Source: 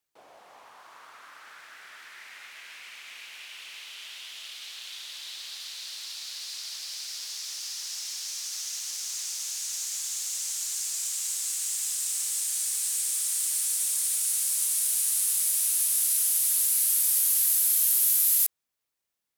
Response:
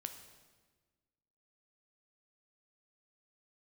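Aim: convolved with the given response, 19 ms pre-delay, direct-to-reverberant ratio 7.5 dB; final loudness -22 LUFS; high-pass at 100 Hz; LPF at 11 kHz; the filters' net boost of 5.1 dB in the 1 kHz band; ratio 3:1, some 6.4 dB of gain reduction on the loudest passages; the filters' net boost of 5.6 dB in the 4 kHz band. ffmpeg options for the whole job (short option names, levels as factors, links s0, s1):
-filter_complex "[0:a]highpass=100,lowpass=11000,equalizer=f=1000:t=o:g=6,equalizer=f=4000:t=o:g=7,acompressor=threshold=0.0282:ratio=3,asplit=2[s0][s1];[1:a]atrim=start_sample=2205,adelay=19[s2];[s1][s2]afir=irnorm=-1:irlink=0,volume=0.596[s3];[s0][s3]amix=inputs=2:normalize=0,volume=2.51"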